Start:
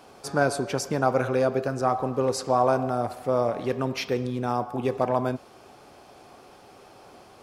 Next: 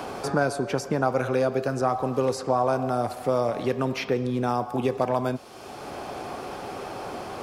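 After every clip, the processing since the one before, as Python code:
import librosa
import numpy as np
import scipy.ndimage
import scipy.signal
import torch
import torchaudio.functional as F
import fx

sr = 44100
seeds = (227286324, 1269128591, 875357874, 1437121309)

y = fx.band_squash(x, sr, depth_pct=70)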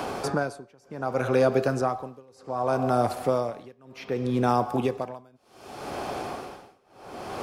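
y = x * (1.0 - 0.98 / 2.0 + 0.98 / 2.0 * np.cos(2.0 * np.pi * 0.66 * (np.arange(len(x)) / sr)))
y = F.gain(torch.from_numpy(y), 3.0).numpy()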